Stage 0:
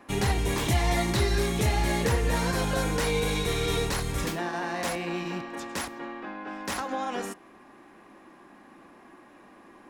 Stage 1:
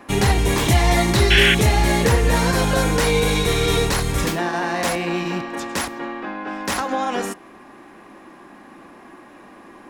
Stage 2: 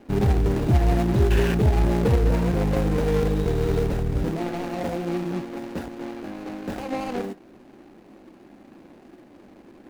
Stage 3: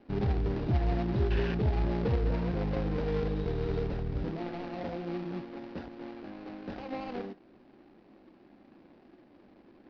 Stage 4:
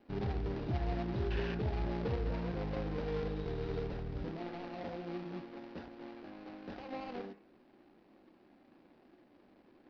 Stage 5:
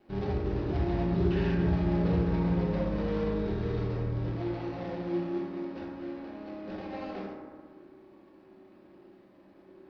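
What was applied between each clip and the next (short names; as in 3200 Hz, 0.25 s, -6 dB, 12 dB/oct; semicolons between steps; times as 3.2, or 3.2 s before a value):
painted sound noise, 1.3–1.55, 1400–3500 Hz -24 dBFS; gain +8.5 dB
median filter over 41 samples; gain -1.5 dB
steep low-pass 5200 Hz 48 dB/oct; gain -9 dB
low shelf 320 Hz -4 dB; de-hum 67.93 Hz, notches 40; gain -3.5 dB
reverb RT60 1.8 s, pre-delay 3 ms, DRR -3.5 dB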